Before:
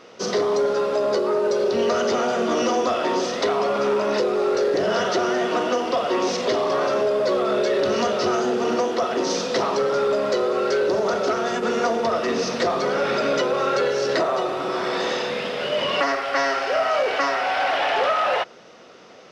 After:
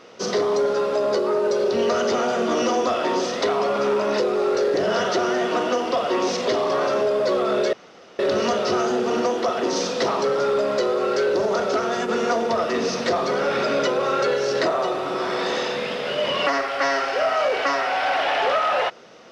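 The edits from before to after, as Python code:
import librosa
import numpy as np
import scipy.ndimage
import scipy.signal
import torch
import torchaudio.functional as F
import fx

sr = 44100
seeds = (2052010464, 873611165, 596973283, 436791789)

y = fx.edit(x, sr, fx.insert_room_tone(at_s=7.73, length_s=0.46), tone=tone)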